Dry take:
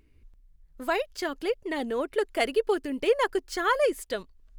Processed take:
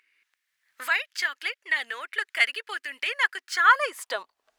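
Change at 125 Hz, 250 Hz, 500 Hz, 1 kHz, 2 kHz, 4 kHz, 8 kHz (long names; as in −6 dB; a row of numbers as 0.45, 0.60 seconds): can't be measured, below −20 dB, −13.0 dB, +4.0 dB, +10.0 dB, +5.5 dB, +2.5 dB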